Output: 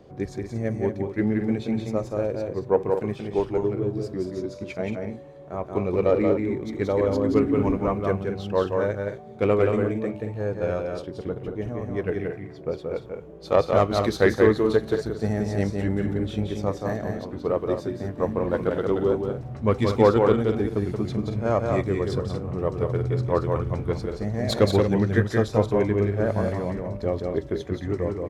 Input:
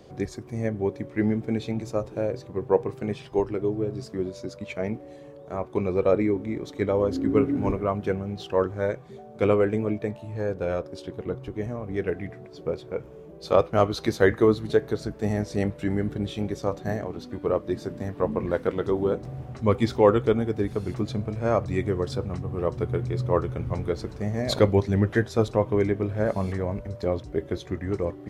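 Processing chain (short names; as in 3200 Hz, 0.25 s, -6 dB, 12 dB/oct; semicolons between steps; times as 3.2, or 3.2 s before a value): self-modulated delay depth 0.073 ms; loudspeakers at several distances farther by 61 m -4 dB, 78 m -10 dB; mismatched tape noise reduction decoder only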